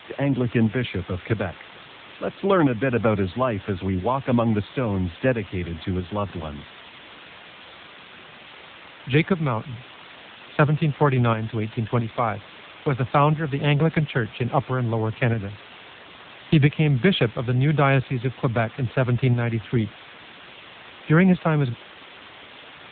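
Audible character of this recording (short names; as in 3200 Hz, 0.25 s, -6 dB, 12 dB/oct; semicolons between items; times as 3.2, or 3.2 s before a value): tremolo saw up 1.5 Hz, depth 50%; a quantiser's noise floor 6-bit, dither triangular; AMR-NB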